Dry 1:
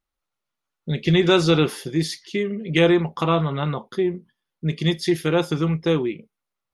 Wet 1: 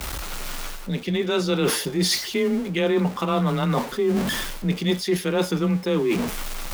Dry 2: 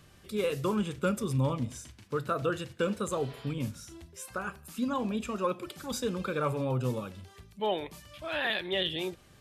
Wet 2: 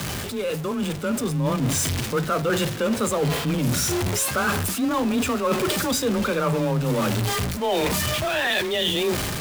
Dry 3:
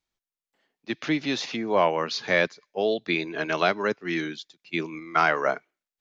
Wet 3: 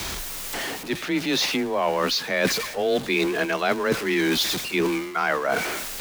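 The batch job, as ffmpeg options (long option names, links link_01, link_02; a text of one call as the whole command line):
ffmpeg -i in.wav -af "aeval=exprs='val(0)+0.5*0.0251*sgn(val(0))':channel_layout=same,areverse,acompressor=threshold=-33dB:ratio=8,areverse,afreqshift=21,dynaudnorm=framelen=760:gausssize=3:maxgain=4.5dB,volume=8.5dB" out.wav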